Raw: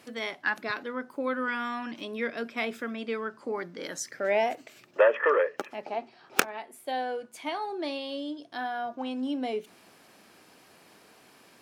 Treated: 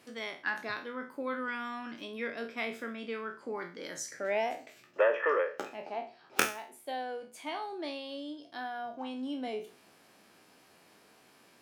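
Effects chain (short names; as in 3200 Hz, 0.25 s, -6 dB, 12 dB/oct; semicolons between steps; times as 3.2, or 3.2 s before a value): spectral trails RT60 0.36 s; gain -6 dB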